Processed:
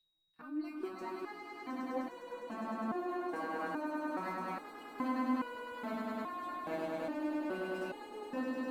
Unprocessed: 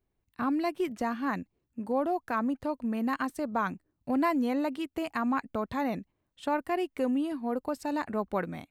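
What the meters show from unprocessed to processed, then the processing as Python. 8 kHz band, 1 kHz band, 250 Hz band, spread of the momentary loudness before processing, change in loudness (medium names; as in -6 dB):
no reading, -7.5 dB, -8.5 dB, 6 LU, -8.0 dB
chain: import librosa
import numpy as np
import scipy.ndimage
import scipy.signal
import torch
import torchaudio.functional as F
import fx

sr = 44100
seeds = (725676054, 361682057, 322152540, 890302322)

p1 = scipy.signal.medfilt(x, 3)
p2 = p1 + 10.0 ** (-57.0 / 20.0) * np.sin(2.0 * np.pi * 3800.0 * np.arange(len(p1)) / sr)
p3 = p2 + fx.echo_swell(p2, sr, ms=102, loudest=8, wet_db=-3.5, dry=0)
p4 = fx.resonator_held(p3, sr, hz=2.4, low_hz=160.0, high_hz=490.0)
y = p4 * librosa.db_to_amplitude(-2.0)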